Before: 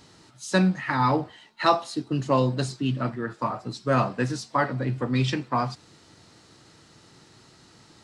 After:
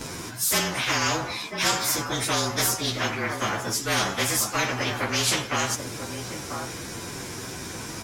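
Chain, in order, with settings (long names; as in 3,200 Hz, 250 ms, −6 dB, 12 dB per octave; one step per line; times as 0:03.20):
partials spread apart or drawn together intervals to 110%
slap from a distant wall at 170 metres, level −22 dB
every bin compressed towards the loudest bin 4 to 1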